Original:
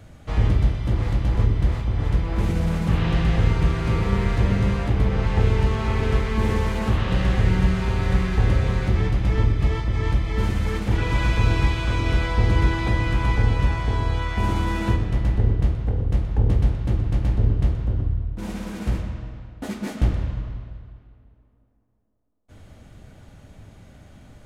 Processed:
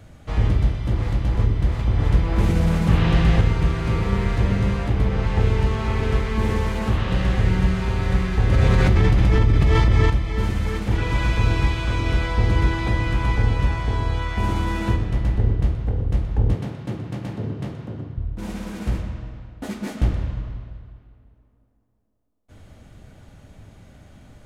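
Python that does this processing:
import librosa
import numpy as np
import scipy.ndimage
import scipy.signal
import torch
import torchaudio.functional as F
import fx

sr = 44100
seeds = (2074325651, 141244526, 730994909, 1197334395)

y = fx.env_flatten(x, sr, amount_pct=100, at=(8.52, 10.1))
y = fx.highpass(y, sr, hz=130.0, slope=24, at=(16.55, 18.17))
y = fx.edit(y, sr, fx.clip_gain(start_s=1.79, length_s=1.62, db=3.5), tone=tone)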